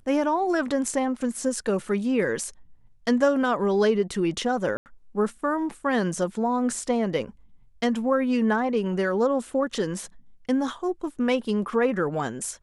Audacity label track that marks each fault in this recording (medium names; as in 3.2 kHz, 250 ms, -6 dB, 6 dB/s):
4.770000	4.860000	dropout 89 ms